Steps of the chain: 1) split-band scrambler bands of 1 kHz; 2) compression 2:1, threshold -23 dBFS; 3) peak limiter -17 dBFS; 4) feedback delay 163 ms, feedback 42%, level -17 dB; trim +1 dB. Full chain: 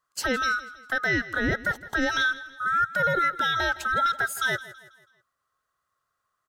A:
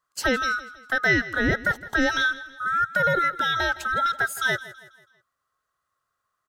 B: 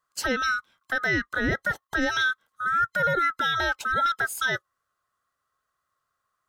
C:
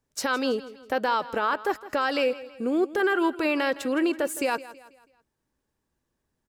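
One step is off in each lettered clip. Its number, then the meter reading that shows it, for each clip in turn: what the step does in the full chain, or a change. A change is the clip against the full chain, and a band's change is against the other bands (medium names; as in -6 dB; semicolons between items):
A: 3, crest factor change +3.5 dB; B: 4, echo-to-direct -16.0 dB to none; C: 1, 500 Hz band +8.5 dB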